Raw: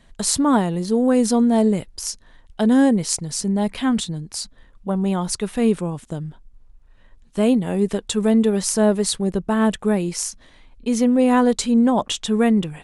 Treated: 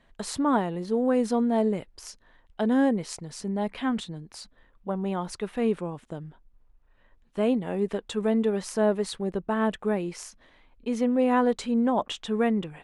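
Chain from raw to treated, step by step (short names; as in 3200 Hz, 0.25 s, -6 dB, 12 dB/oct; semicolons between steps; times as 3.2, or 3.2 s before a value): tone controls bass -7 dB, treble -13 dB; gain -4.5 dB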